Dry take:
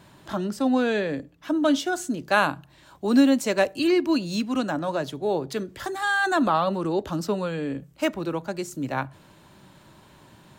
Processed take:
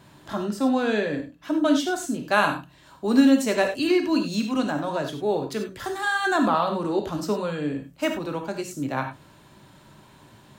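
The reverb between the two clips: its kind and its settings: gated-style reverb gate 120 ms flat, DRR 4 dB; trim -1 dB

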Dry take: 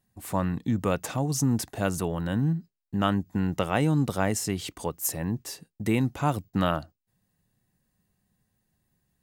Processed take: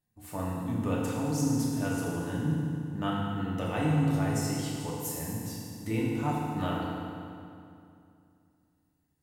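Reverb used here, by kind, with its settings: FDN reverb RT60 2.5 s, low-frequency decay 1.2×, high-frequency decay 0.8×, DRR -5.5 dB; trim -11.5 dB

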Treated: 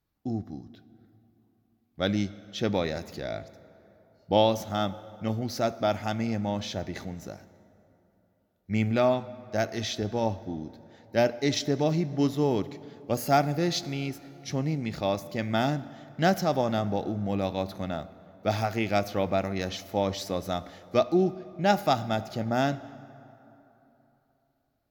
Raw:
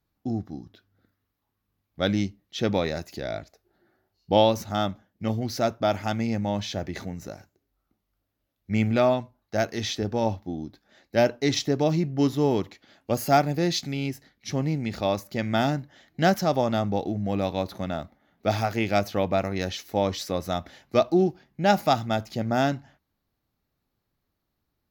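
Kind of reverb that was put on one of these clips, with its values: plate-style reverb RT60 3.3 s, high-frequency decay 0.55×, DRR 16 dB; trim -2.5 dB

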